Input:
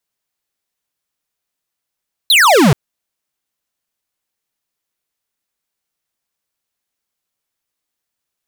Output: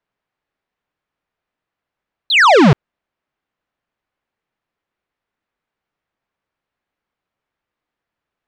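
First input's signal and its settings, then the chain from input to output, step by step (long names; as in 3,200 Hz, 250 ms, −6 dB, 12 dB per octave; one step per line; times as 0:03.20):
single falling chirp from 4,300 Hz, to 120 Hz, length 0.43 s square, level −8.5 dB
low-pass filter 2,000 Hz 12 dB per octave
in parallel at −9.5 dB: sine wavefolder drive 6 dB, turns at −7.5 dBFS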